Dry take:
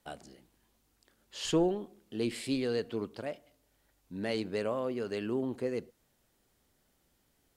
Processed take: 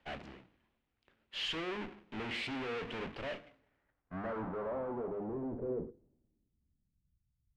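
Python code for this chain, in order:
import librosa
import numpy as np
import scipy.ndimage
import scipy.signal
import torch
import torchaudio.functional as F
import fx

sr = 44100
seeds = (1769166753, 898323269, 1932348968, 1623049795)

y = fx.halfwave_hold(x, sr)
y = fx.tube_stage(y, sr, drive_db=44.0, bias=0.45)
y = fx.filter_sweep_lowpass(y, sr, from_hz=2600.0, to_hz=140.0, start_s=3.42, end_s=7.27, q=1.7)
y = fx.hum_notches(y, sr, base_hz=50, count=10)
y = fx.band_widen(y, sr, depth_pct=70)
y = y * librosa.db_to_amplitude(5.5)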